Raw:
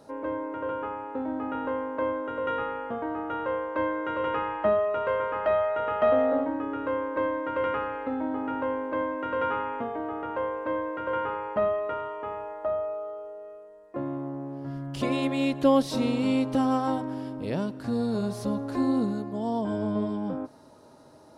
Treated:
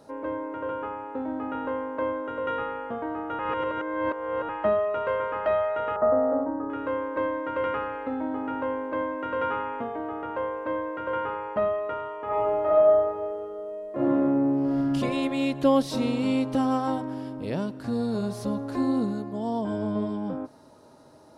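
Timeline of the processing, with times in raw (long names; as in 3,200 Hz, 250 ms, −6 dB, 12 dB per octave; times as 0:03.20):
0:03.39–0:04.49: reverse
0:05.96–0:06.70: inverse Chebyshev low-pass filter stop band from 3,600 Hz, stop band 50 dB
0:12.25–0:14.93: thrown reverb, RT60 1.7 s, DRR −8 dB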